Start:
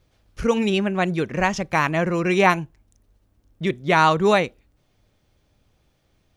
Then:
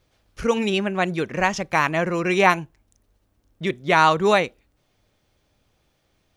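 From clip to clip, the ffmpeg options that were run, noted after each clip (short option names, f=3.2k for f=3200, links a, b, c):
-af "lowshelf=f=270:g=-6,volume=1dB"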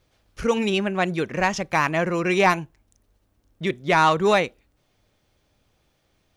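-af "asoftclip=type=tanh:threshold=-7dB"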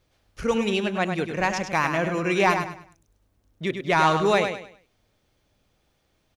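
-af "aecho=1:1:101|202|303|404:0.447|0.138|0.0429|0.0133,volume=-2.5dB"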